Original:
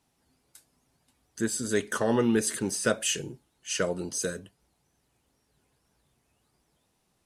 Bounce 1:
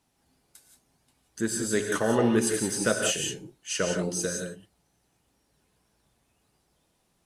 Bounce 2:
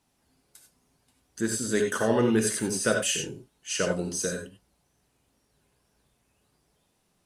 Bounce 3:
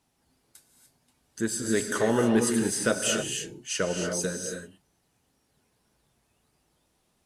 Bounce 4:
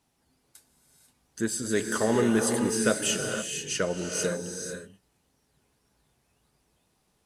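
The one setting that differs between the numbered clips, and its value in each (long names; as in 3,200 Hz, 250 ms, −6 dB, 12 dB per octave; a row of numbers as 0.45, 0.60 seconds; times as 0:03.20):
reverb whose tail is shaped and stops, gate: 200, 110, 320, 520 milliseconds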